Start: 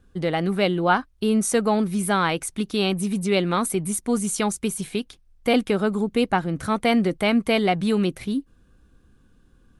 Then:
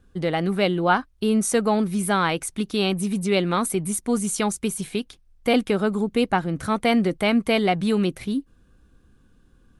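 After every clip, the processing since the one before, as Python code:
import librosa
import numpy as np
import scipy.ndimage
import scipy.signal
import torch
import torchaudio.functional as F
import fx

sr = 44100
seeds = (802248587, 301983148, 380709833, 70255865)

y = x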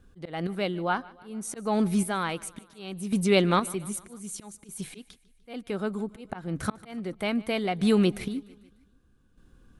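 y = fx.auto_swell(x, sr, attack_ms=338.0)
y = fx.chopper(y, sr, hz=0.64, depth_pct=60, duty_pct=30)
y = fx.echo_feedback(y, sr, ms=149, feedback_pct=56, wet_db=-22.0)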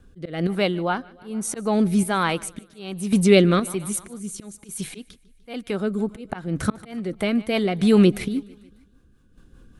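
y = fx.rotary_switch(x, sr, hz=1.2, then_hz=5.0, switch_at_s=5.61)
y = y * 10.0 ** (8.0 / 20.0)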